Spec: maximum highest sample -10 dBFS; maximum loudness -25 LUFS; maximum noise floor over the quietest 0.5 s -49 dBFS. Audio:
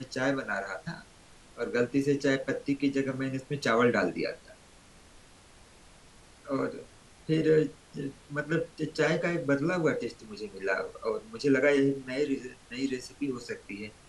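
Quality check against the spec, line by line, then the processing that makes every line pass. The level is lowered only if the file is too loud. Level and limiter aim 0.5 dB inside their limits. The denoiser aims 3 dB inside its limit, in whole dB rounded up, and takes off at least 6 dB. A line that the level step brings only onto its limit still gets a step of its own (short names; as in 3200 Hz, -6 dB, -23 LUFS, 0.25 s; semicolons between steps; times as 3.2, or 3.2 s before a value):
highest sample -13.0 dBFS: OK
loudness -30.0 LUFS: OK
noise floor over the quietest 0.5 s -55 dBFS: OK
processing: none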